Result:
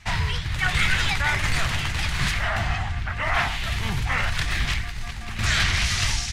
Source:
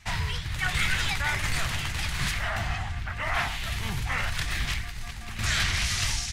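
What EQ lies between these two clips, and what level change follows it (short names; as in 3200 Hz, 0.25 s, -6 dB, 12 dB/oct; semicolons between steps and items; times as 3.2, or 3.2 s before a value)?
high shelf 8800 Hz -9.5 dB; +5.0 dB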